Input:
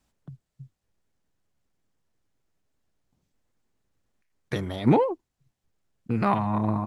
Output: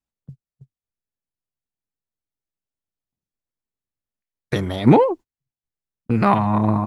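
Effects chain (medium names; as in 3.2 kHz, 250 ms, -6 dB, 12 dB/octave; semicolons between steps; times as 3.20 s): gate -40 dBFS, range -25 dB; trim +7 dB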